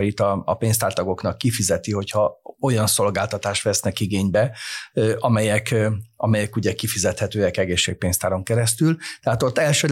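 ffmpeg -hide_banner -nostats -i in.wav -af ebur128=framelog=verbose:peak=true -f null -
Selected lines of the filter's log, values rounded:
Integrated loudness:
  I:         -21.1 LUFS
  Threshold: -31.1 LUFS
Loudness range:
  LRA:         0.8 LU
  Threshold: -41.2 LUFS
  LRA low:   -21.5 LUFS
  LRA high:  -20.7 LUFS
True peak:
  Peak:       -7.1 dBFS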